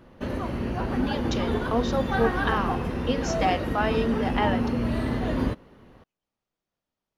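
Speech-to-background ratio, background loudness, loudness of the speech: −1.0 dB, −28.0 LKFS, −29.0 LKFS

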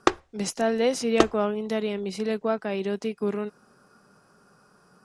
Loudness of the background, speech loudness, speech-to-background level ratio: −26.5 LKFS, −27.5 LKFS, −1.0 dB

